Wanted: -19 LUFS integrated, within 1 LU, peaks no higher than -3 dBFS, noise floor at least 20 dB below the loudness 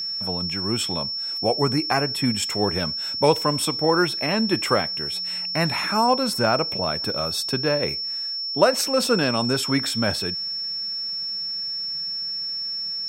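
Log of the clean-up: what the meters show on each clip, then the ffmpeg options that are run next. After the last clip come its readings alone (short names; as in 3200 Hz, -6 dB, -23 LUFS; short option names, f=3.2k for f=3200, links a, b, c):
steady tone 5400 Hz; tone level -26 dBFS; loudness -22.5 LUFS; peak -2.5 dBFS; loudness target -19.0 LUFS
-> -af "bandreject=f=5.4k:w=30"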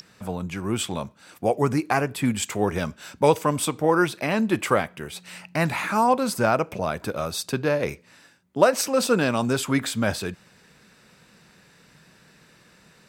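steady tone none; loudness -24.0 LUFS; peak -3.0 dBFS; loudness target -19.0 LUFS
-> -af "volume=5dB,alimiter=limit=-3dB:level=0:latency=1"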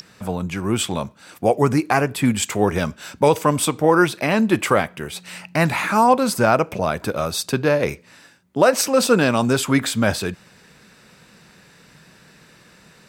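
loudness -19.5 LUFS; peak -3.0 dBFS; noise floor -51 dBFS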